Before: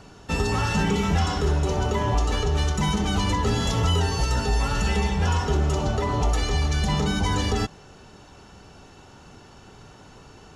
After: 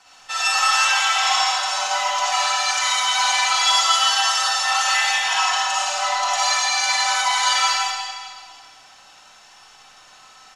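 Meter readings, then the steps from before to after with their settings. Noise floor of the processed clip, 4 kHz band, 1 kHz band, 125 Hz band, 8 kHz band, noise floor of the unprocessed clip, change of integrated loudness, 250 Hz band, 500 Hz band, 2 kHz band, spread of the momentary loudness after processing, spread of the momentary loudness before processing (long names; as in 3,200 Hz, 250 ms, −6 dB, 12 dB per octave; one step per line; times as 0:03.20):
−48 dBFS, +13.0 dB, +9.5 dB, below −40 dB, +13.5 dB, −49 dBFS, +6.0 dB, below −30 dB, −7.5 dB, +11.5 dB, 5 LU, 2 LU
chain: Chebyshev high-pass filter 650 Hz, order 5
reverb reduction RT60 0.87 s
spectral tilt +3.5 dB per octave
comb filter 3.9 ms, depth 68%
dead-zone distortion −53 dBFS
high-frequency loss of the air 67 metres
on a send: single-tap delay 168 ms −6.5 dB
on the sum: comb and all-pass reverb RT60 1.9 s, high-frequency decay 0.95×, pre-delay 15 ms, DRR −9 dB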